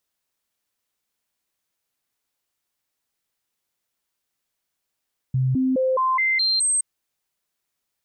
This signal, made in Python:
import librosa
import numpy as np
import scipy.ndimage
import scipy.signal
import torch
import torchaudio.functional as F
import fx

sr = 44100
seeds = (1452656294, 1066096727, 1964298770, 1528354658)

y = fx.stepped_sweep(sr, from_hz=130.0, direction='up', per_octave=1, tones=7, dwell_s=0.21, gap_s=0.0, level_db=-17.5)